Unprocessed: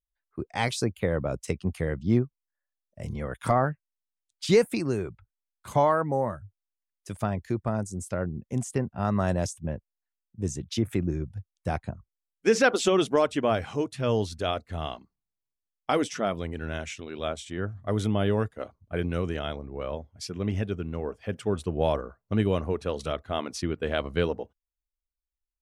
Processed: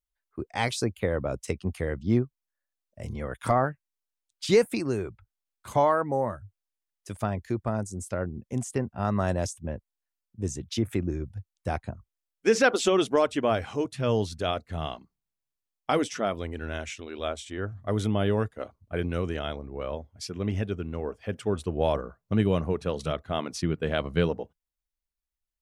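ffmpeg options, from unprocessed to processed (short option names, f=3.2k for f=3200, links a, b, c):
-af "asetnsamples=n=441:p=0,asendcmd='13.85 equalizer g 3;15.99 equalizer g -7;16.89 equalizer g -13.5;17.72 equalizer g -2.5;21.95 equalizer g 7.5',equalizer=f=160:t=o:w=0.39:g=-6"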